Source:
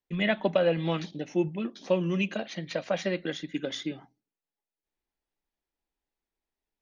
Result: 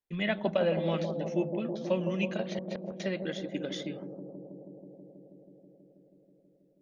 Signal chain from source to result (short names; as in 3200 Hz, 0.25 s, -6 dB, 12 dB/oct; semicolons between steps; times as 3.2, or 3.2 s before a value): 2.41–3 flipped gate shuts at -24 dBFS, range -31 dB; on a send: analogue delay 0.161 s, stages 1024, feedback 84%, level -7.5 dB; on the sum: gain -4 dB